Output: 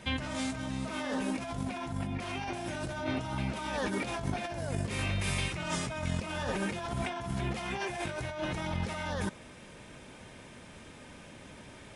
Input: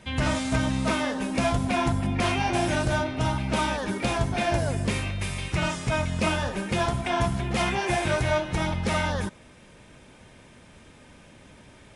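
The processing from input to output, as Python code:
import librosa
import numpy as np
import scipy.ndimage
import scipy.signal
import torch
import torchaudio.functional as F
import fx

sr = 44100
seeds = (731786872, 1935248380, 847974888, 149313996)

y = fx.low_shelf(x, sr, hz=96.0, db=-5.0)
y = fx.over_compress(y, sr, threshold_db=-32.0, ratio=-1.0)
y = y * 10.0 ** (-3.0 / 20.0)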